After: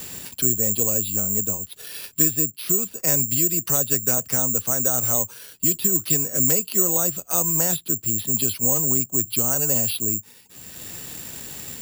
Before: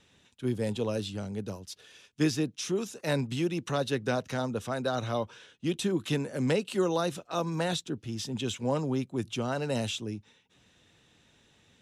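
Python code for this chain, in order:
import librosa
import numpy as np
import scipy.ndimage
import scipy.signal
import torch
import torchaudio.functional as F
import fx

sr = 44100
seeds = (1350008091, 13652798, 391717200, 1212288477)

y = fx.low_shelf(x, sr, hz=120.0, db=5.5)
y = (np.kron(scipy.signal.resample_poly(y, 1, 6), np.eye(6)[0]) * 6)[:len(y)]
y = fx.band_squash(y, sr, depth_pct=70)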